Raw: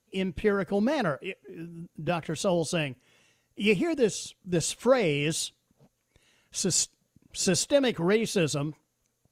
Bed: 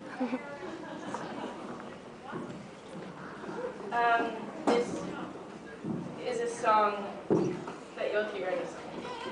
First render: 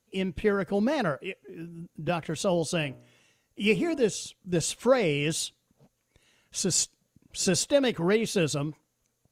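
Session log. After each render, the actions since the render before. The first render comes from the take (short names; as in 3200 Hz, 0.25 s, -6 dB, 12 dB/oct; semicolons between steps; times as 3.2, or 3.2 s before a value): 2.8–4.04 de-hum 60.71 Hz, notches 24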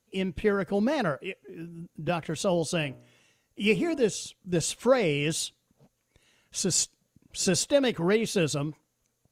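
nothing audible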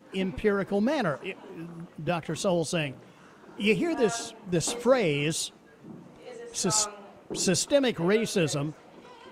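add bed -9.5 dB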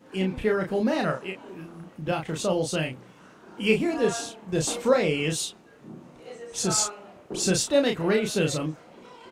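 doubler 32 ms -4 dB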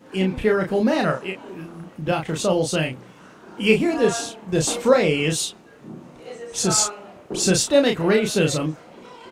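gain +5 dB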